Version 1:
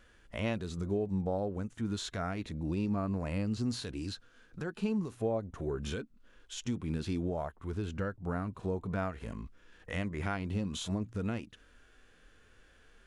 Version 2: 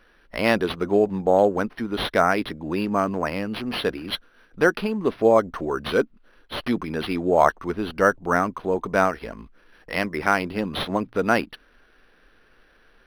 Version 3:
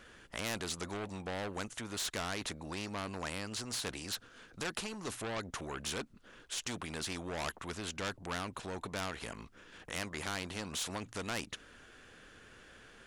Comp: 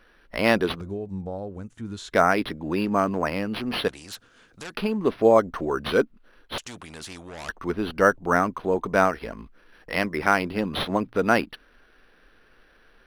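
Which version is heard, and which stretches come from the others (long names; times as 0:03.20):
2
0:00.81–0:02.13: punch in from 1
0:03.88–0:04.74: punch in from 3
0:06.58–0:07.49: punch in from 3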